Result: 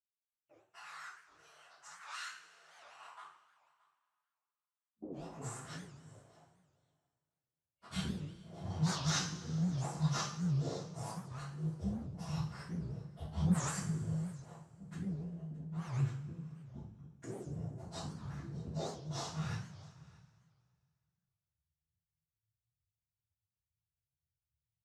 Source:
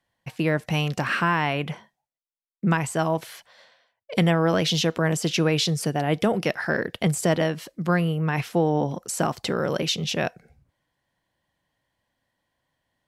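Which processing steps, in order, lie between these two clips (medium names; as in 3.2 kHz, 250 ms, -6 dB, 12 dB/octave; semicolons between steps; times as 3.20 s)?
local Wiener filter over 9 samples; inverse Chebyshev band-stop 250–1800 Hz, stop band 70 dB; harmonic-percussive split harmonic -13 dB; plain phase-vocoder stretch 1.9×; in parallel at 0 dB: compression, threshold -49 dBFS, peak gain reduction 15 dB; on the sum: waveshaping leveller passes 2; LFO low-pass saw up 0.87 Hz 320–1600 Hz; flange 0.35 Hz, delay 7.2 ms, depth 8.2 ms, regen +65%; high-pass sweep 1.5 kHz -> 150 Hz, 2.83–5.97 s; on a send: delay 621 ms -22.5 dB; on the sum: two-slope reverb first 0.45 s, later 2.3 s, from -18 dB, DRR -8.5 dB; warped record 78 rpm, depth 250 cents; trim +16 dB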